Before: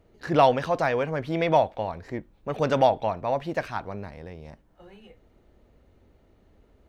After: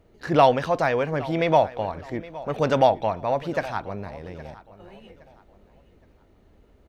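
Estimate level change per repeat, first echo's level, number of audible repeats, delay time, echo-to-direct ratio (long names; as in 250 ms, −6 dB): −10.0 dB, −18.5 dB, 2, 816 ms, −18.0 dB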